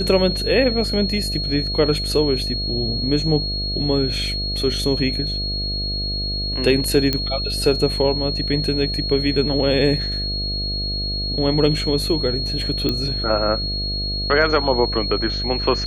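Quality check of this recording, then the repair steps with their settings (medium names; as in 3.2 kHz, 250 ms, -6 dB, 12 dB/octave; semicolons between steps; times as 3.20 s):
buzz 50 Hz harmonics 14 -27 dBFS
whine 4.3 kHz -24 dBFS
7.13 s: pop -6 dBFS
12.89 s: pop -8 dBFS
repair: de-click; de-hum 50 Hz, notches 14; band-stop 4.3 kHz, Q 30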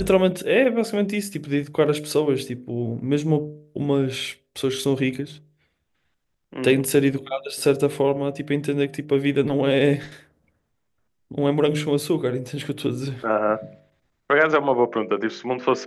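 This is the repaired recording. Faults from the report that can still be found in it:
nothing left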